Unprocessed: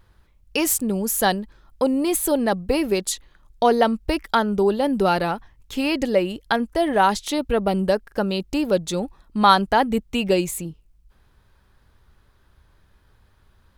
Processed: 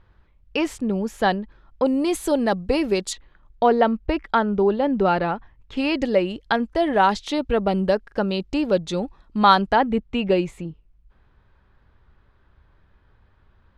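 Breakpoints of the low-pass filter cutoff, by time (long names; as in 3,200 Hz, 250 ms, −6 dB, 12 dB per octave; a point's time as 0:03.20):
3,000 Hz
from 0:01.86 6,300 Hz
from 0:03.13 2,600 Hz
from 0:05.77 4,700 Hz
from 0:09.76 2,700 Hz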